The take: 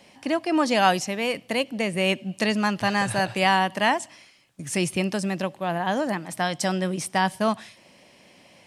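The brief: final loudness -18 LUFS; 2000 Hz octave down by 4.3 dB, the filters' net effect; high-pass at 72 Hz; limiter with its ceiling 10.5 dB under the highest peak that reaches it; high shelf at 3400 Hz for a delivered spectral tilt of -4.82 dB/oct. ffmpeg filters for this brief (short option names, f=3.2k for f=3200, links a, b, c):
-af "highpass=72,equalizer=f=2k:t=o:g=-4.5,highshelf=f=3.4k:g=-3,volume=11dB,alimiter=limit=-7dB:level=0:latency=1"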